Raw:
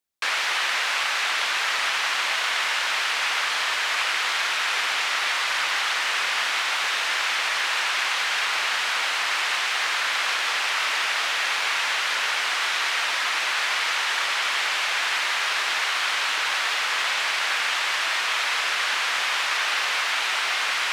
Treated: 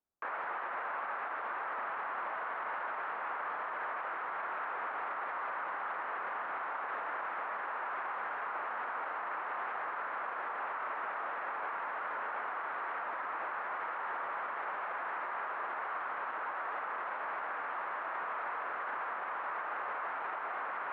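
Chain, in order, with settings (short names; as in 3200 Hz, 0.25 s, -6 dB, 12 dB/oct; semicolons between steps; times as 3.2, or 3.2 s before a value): LPF 1300 Hz 24 dB/oct; limiter -30 dBFS, peak gain reduction 10.5 dB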